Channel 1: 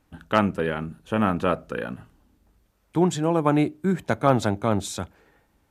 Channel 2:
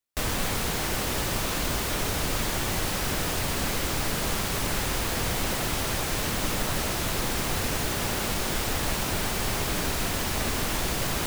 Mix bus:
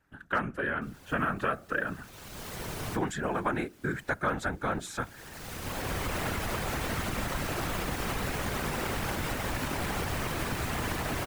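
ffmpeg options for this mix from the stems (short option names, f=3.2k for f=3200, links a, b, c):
-filter_complex "[0:a]equalizer=f=1.6k:w=2.1:g=13,volume=-2.5dB,asplit=2[a][b];[1:a]alimiter=level_in=1dB:limit=-24dB:level=0:latency=1:release=198,volume=-1dB,adelay=650,volume=-0.5dB[c];[b]apad=whole_len=525314[d];[c][d]sidechaincompress=threshold=-44dB:ratio=4:attack=12:release=667[e];[a][e]amix=inputs=2:normalize=0,dynaudnorm=f=150:g=7:m=13dB,afftfilt=real='hypot(re,im)*cos(2*PI*random(0))':imag='hypot(re,im)*sin(2*PI*random(1))':win_size=512:overlap=0.75,acrossover=split=1200|2400|6600[f][g][h][i];[f]acompressor=threshold=-30dB:ratio=4[j];[g]acompressor=threshold=-33dB:ratio=4[k];[h]acompressor=threshold=-49dB:ratio=4[l];[i]acompressor=threshold=-44dB:ratio=4[m];[j][k][l][m]amix=inputs=4:normalize=0"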